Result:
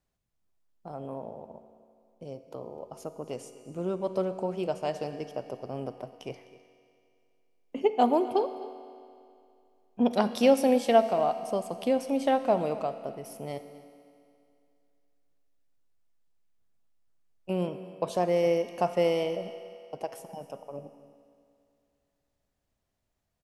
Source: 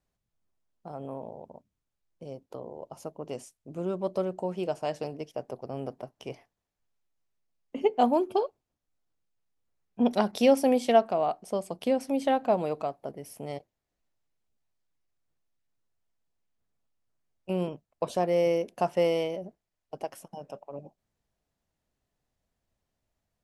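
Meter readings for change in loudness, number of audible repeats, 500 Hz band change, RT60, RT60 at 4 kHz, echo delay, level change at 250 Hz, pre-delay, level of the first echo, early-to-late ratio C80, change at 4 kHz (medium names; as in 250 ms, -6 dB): 0.0 dB, 1, +0.5 dB, 2.5 s, 2.4 s, 256 ms, 0.0 dB, 35 ms, -19.0 dB, 10.5 dB, +0.5 dB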